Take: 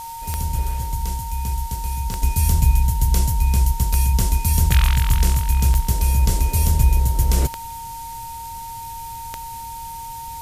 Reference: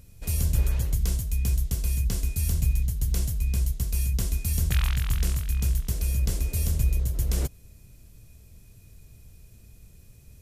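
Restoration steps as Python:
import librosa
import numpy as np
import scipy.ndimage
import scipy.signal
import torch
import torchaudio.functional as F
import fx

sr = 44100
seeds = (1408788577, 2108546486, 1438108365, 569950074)

y = fx.fix_declick_ar(x, sr, threshold=10.0)
y = fx.notch(y, sr, hz=920.0, q=30.0)
y = fx.noise_reduce(y, sr, print_start_s=9.88, print_end_s=10.38, reduce_db=18.0)
y = fx.gain(y, sr, db=fx.steps((0.0, 0.0), (2.22, -8.0)))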